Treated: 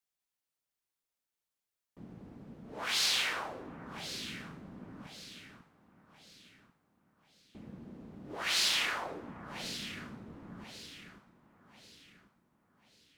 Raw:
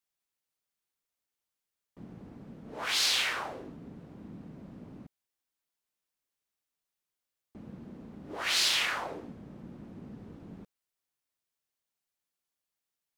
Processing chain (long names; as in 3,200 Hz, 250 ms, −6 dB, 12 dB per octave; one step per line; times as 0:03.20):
delay that swaps between a low-pass and a high-pass 545 ms, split 1,200 Hz, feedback 61%, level −8 dB
level −2.5 dB